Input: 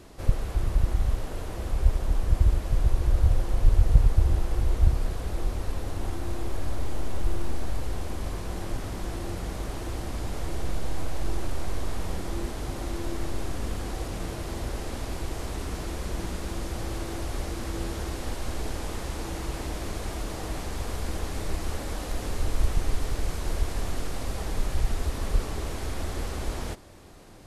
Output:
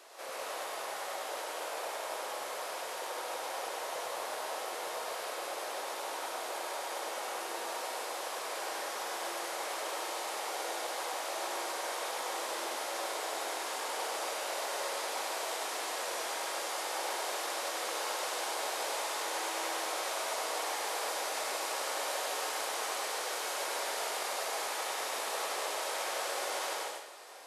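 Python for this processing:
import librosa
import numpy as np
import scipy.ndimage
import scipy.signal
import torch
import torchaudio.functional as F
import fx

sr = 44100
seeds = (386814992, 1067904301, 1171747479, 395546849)

p1 = scipy.signal.sosfilt(scipy.signal.butter(4, 540.0, 'highpass', fs=sr, output='sos'), x)
p2 = p1 + fx.echo_single(p1, sr, ms=100, db=-4.0, dry=0)
y = fx.rev_plate(p2, sr, seeds[0], rt60_s=0.68, hf_ratio=1.0, predelay_ms=110, drr_db=-0.5)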